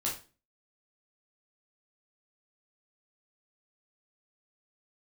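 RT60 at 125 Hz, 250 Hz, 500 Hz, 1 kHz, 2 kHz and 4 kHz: 0.45 s, 0.45 s, 0.35 s, 0.30 s, 0.30 s, 0.30 s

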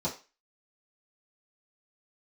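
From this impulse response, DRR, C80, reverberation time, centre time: -9.0 dB, 16.5 dB, 0.30 s, 19 ms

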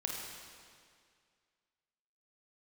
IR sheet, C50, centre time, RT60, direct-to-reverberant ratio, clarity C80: 0.5 dB, 97 ms, 2.1 s, -1.0 dB, 2.0 dB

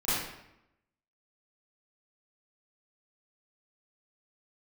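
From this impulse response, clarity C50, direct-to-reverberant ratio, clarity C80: -3.0 dB, -15.0 dB, 1.5 dB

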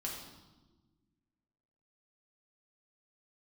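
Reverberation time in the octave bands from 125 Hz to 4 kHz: 1.9 s, 2.0 s, 1.5 s, 1.1 s, 0.85 s, 1.0 s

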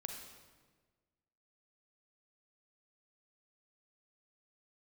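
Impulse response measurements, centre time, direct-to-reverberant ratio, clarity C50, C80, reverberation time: 45 ms, 2.5 dB, 3.5 dB, 6.0 dB, 1.4 s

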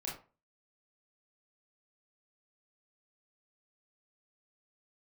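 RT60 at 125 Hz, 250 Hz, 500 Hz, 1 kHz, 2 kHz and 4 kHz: 0.40 s, 0.35 s, 0.35 s, 0.35 s, 0.30 s, 0.20 s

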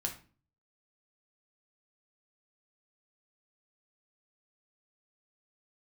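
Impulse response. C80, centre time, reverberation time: 16.0 dB, 17 ms, 0.40 s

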